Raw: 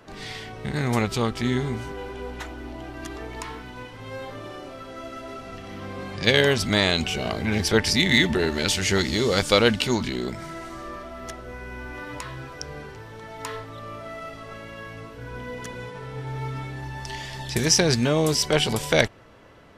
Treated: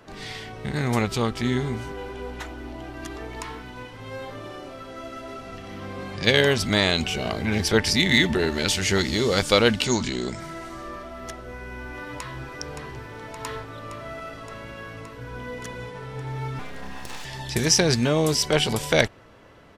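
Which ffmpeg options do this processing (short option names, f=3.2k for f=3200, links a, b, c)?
-filter_complex "[0:a]asettb=1/sr,asplit=3[a][b][c];[a]atrim=end=9.844[d];[b]atrim=start=9.84:end=10.4,asetpts=PTS-STARTPTS,afade=t=in:d=0.004:c=qsin,afade=t=out:st=0.556:d=0.004:c=qsin,lowpass=f=7.3k:t=q:w=2.8[e];[c]atrim=start=10.396[f];[d][e]acrossfade=d=0.004:c1=hsin:c2=qsin[g];[g][f]acrossfade=d=0.004:c1=qsin:c2=hsin,asplit=2[h][i];[i]afade=t=in:st=11.68:d=0.01,afade=t=out:st=12.49:d=0.01,aecho=0:1:570|1140|1710|2280|2850|3420|3990|4560|5130|5700|6270|6840:0.501187|0.40095|0.32076|0.256608|0.205286|0.164229|0.131383|0.105107|0.0840853|0.0672682|0.0538146|0.0430517[j];[h][j]amix=inputs=2:normalize=0,asettb=1/sr,asplit=3[k][l][m];[k]atrim=end=16.594[n];[l]atrim=start=16.59:end=17.25,asetpts=PTS-STARTPTS,afade=t=in:d=0.004:c=qsin,afade=t=out:st=0.656:d=0.004:c=qsin,aeval=exprs='abs(val(0))':c=same[o];[m]atrim=start=17.246[p];[n][o]acrossfade=d=0.004:c1=hsin:c2=qsin[q];[q][p]acrossfade=d=0.004:c1=qsin:c2=hsin"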